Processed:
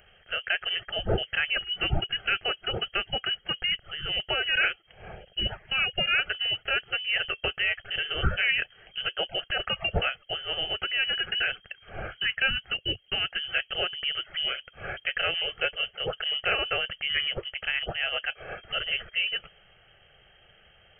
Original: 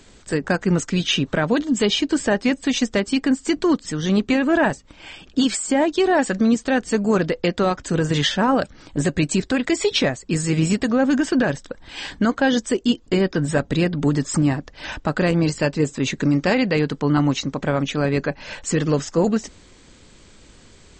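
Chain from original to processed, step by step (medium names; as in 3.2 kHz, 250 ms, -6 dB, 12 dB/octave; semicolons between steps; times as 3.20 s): frequency inversion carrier 3.2 kHz; tilt shelf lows +4 dB, about 810 Hz; static phaser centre 1 kHz, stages 6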